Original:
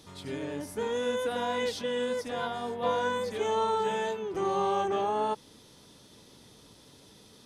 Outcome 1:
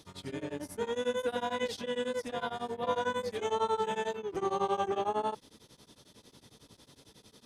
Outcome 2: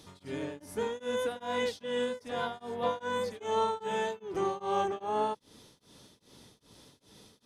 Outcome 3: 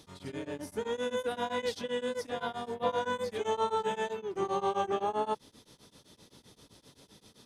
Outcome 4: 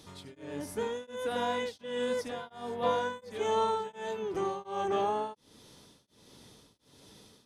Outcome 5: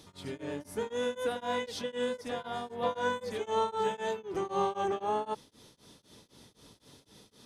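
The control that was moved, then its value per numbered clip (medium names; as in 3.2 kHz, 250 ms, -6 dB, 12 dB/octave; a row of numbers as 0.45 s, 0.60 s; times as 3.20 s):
tremolo of two beating tones, nulls at: 11 Hz, 2.5 Hz, 7.7 Hz, 1.4 Hz, 3.9 Hz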